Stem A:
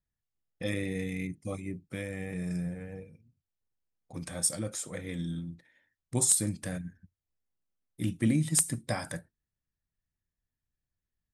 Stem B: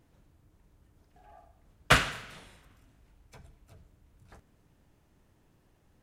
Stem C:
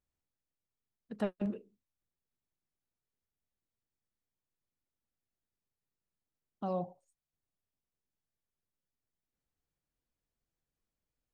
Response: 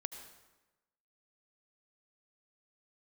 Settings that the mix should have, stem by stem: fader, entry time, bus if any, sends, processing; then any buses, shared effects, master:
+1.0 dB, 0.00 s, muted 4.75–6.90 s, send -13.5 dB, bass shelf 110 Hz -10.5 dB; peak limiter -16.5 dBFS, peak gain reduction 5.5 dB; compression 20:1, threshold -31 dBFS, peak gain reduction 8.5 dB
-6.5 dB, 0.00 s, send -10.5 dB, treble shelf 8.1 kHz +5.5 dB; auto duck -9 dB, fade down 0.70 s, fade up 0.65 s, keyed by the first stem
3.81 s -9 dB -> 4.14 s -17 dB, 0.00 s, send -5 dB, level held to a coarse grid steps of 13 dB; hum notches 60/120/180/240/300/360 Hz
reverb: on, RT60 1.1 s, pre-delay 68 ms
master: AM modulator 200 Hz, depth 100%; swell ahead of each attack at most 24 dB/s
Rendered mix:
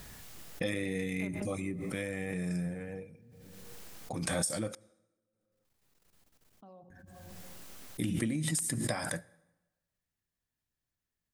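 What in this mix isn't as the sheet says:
stem B: muted; master: missing AM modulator 200 Hz, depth 100%

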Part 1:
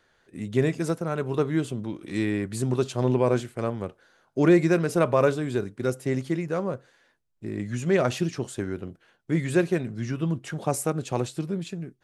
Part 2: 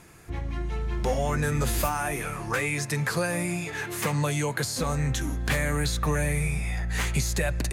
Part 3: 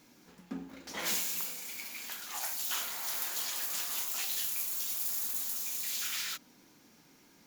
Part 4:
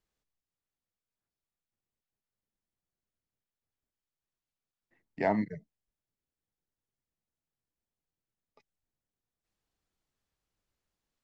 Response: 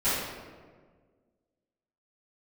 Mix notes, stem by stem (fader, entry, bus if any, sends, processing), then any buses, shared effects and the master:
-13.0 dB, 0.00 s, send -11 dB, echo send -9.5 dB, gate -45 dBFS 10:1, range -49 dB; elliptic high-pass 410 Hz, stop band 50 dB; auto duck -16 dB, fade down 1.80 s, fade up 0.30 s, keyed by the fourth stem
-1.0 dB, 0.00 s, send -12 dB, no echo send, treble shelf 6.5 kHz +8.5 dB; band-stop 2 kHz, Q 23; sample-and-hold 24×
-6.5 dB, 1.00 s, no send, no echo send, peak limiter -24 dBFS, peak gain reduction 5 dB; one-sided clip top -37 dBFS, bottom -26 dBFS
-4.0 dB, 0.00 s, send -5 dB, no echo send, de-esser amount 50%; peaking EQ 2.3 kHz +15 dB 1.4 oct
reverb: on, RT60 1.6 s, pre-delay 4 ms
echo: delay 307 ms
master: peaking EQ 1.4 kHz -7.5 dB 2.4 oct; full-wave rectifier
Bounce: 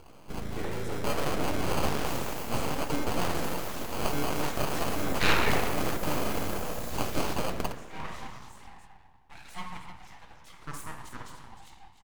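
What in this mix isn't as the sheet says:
stem 2: send -12 dB -> -22 dB; master: missing peaking EQ 1.4 kHz -7.5 dB 2.4 oct

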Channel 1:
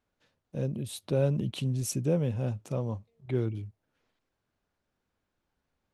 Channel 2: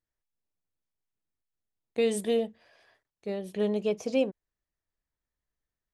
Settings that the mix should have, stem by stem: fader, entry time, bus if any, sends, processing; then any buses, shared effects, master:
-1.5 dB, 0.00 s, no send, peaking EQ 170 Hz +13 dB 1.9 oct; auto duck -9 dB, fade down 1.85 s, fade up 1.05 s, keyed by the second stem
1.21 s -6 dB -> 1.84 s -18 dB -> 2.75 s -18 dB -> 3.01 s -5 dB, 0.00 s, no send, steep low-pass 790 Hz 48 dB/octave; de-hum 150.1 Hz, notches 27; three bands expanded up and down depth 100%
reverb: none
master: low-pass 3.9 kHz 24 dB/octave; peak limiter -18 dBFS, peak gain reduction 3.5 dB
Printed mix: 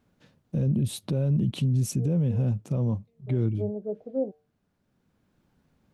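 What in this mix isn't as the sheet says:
stem 1 -1.5 dB -> +7.5 dB; master: missing low-pass 3.9 kHz 24 dB/octave

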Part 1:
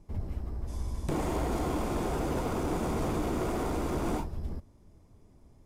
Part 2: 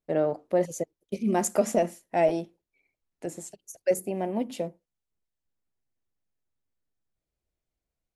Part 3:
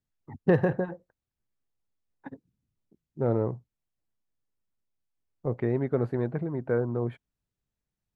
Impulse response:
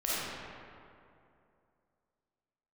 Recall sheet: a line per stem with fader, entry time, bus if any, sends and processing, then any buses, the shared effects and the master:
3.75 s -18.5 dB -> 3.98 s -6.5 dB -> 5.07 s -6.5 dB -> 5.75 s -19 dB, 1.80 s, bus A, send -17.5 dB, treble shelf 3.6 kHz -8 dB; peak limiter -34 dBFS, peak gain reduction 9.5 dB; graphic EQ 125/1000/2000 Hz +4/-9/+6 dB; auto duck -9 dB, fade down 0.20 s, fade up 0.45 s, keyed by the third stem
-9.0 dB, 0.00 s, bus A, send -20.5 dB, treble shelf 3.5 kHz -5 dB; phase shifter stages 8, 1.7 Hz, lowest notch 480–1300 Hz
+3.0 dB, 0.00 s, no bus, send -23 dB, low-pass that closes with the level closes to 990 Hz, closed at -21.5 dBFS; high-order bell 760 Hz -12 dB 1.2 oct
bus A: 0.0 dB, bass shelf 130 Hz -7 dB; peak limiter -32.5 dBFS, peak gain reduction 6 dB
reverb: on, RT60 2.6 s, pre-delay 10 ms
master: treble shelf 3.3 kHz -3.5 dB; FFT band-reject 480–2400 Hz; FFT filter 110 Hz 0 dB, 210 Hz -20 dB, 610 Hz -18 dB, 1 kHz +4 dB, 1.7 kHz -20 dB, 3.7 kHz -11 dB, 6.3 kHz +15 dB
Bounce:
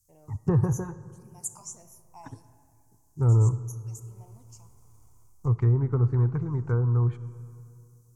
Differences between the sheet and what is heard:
stem 1 -18.5 dB -> -28.0 dB; stem 3 +3.0 dB -> +13.5 dB; master: missing FFT band-reject 480–2400 Hz

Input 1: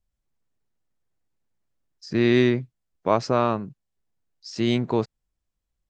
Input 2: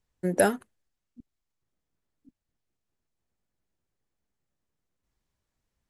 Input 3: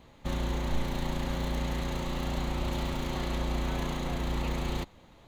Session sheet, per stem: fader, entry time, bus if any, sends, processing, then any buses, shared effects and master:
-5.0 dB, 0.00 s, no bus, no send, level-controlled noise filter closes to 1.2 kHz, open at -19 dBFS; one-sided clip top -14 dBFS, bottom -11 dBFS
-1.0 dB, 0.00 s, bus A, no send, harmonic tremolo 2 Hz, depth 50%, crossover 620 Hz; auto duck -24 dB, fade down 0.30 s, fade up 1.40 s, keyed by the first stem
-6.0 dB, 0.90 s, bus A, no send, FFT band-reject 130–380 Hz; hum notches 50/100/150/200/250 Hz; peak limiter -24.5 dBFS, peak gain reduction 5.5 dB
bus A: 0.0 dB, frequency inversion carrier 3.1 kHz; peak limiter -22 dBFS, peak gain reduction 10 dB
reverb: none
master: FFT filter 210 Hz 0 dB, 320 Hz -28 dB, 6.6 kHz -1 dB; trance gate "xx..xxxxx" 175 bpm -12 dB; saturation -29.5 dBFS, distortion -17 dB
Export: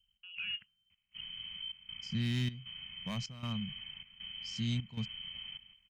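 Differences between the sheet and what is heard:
stem 1: missing level-controlled noise filter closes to 1.2 kHz, open at -19 dBFS; stem 2 -1.0 dB -> +9.0 dB; master: missing saturation -29.5 dBFS, distortion -17 dB

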